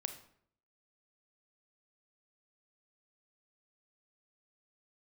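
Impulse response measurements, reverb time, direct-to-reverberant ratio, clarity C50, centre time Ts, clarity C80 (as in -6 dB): 0.65 s, 7.5 dB, 10.0 dB, 11 ms, 13.5 dB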